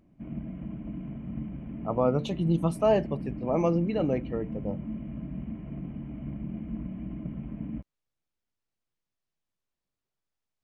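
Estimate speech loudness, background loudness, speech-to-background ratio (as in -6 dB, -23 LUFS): -28.0 LUFS, -38.0 LUFS, 10.0 dB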